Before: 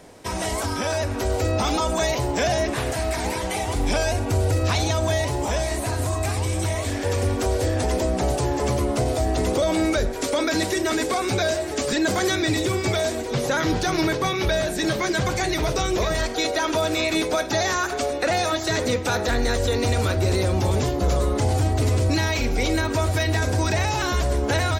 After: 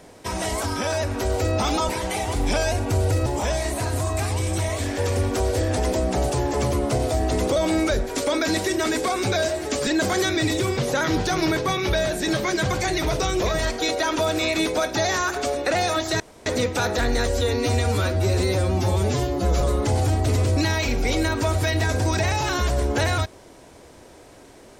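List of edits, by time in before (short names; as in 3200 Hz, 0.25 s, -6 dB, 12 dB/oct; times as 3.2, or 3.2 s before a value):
1.89–3.29 cut
4.66–5.32 cut
12.83–13.33 cut
18.76 insert room tone 0.26 s
19.6–21.14 stretch 1.5×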